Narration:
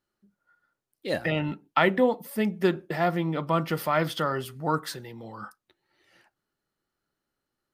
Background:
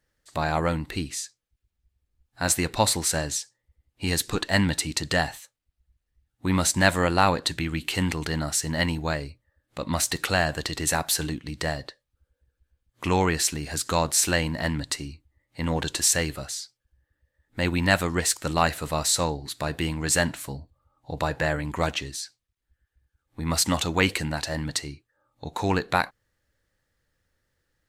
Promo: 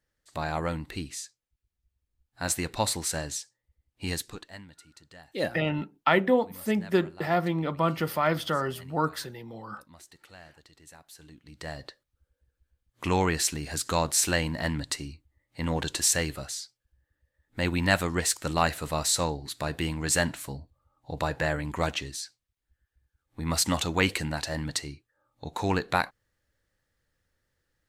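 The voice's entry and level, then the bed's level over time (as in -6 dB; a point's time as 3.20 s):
4.30 s, -0.5 dB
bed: 4.12 s -5.5 dB
4.67 s -27 dB
11.09 s -27 dB
11.94 s -2.5 dB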